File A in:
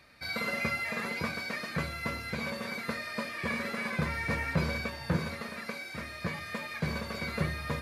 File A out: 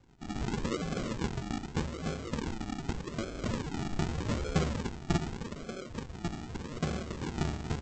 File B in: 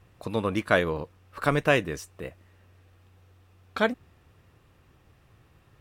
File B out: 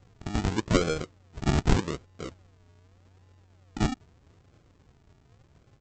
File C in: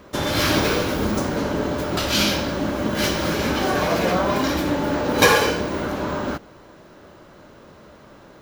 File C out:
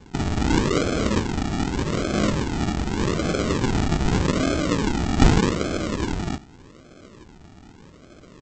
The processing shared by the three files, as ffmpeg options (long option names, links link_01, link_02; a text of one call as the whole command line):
ffmpeg -i in.wav -af "lowpass=frequency=2800:width=0.5412,lowpass=frequency=2800:width=1.3066,aresample=16000,acrusher=samples=24:mix=1:aa=0.000001:lfo=1:lforange=14.4:lforate=0.83,aresample=44100" out.wav